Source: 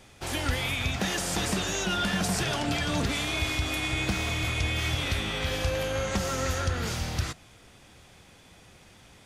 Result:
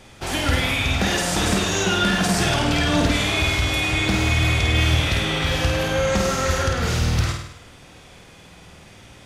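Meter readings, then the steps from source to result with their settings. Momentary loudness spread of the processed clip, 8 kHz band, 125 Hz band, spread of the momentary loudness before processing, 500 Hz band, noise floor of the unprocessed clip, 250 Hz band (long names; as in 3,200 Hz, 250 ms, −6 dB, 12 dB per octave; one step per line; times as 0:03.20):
3 LU, +6.5 dB, +9.0 dB, 4 LU, +8.5 dB, −54 dBFS, +8.5 dB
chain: high-shelf EQ 7,700 Hz −5 dB
hard clipping −19.5 dBFS, distortion −31 dB
flutter between parallel walls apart 8.7 metres, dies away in 0.71 s
level +6.5 dB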